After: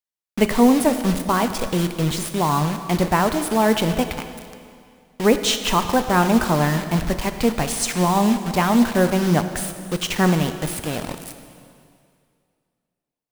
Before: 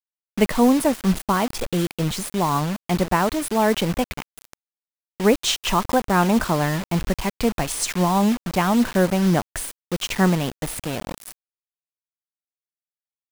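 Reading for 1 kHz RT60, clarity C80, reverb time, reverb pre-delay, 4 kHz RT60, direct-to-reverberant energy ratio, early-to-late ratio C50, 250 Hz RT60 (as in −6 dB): 2.3 s, 10.0 dB, 2.3 s, 4 ms, 2.1 s, 8.0 dB, 9.5 dB, 2.2 s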